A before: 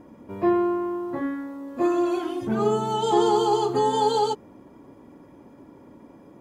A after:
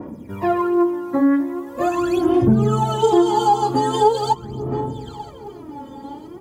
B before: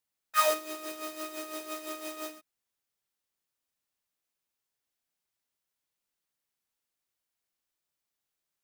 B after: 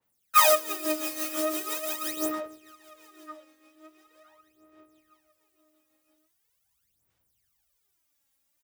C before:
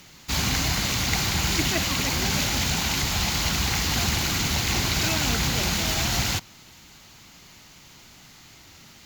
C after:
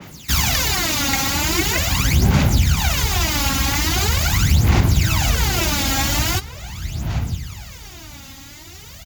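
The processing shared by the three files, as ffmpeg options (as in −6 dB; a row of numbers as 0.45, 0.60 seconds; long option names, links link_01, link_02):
-filter_complex "[0:a]bandreject=frequency=4200:width=25,asplit=2[link_01][link_02];[link_02]adelay=968,lowpass=frequency=4500:poles=1,volume=-19dB,asplit=2[link_03][link_04];[link_04]adelay=968,lowpass=frequency=4500:poles=1,volume=0.51,asplit=2[link_05][link_06];[link_06]adelay=968,lowpass=frequency=4500:poles=1,volume=0.51,asplit=2[link_07][link_08];[link_08]adelay=968,lowpass=frequency=4500:poles=1,volume=0.51[link_09];[link_03][link_05][link_07][link_09]amix=inputs=4:normalize=0[link_10];[link_01][link_10]amix=inputs=2:normalize=0,aphaser=in_gain=1:out_gain=1:delay=3.7:decay=0.75:speed=0.42:type=sinusoidal,highpass=50,acrossover=split=140[link_11][link_12];[link_11]dynaudnorm=framelen=220:gausssize=17:maxgain=12dB[link_13];[link_13][link_12]amix=inputs=2:normalize=0,highshelf=frequency=8500:gain=7,acompressor=threshold=-16dB:ratio=3,adynamicequalizer=threshold=0.01:dfrequency=2300:dqfactor=0.7:tfrequency=2300:tqfactor=0.7:attack=5:release=100:ratio=0.375:range=2:mode=cutabove:tftype=highshelf,volume=3.5dB"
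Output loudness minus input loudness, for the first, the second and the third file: +5.0, +8.0, +5.0 LU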